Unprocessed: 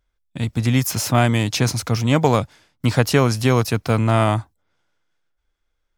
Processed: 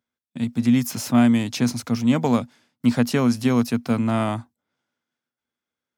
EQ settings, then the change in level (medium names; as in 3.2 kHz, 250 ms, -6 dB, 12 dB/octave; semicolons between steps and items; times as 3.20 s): high-pass 110 Hz 24 dB/octave; peaking EQ 240 Hz +15 dB 0.21 oct; -6.5 dB